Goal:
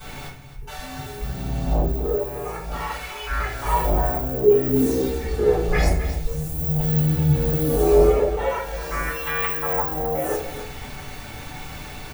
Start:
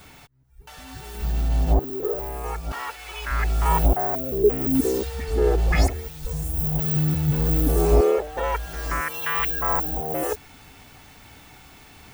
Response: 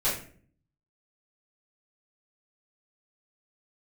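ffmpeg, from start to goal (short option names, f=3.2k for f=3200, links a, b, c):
-filter_complex "[0:a]areverse,acompressor=mode=upward:threshold=-27dB:ratio=2.5,areverse,aecho=1:1:262:0.251[a];[1:a]atrim=start_sample=2205[b];[a][b]afir=irnorm=-1:irlink=0,volume=-9dB"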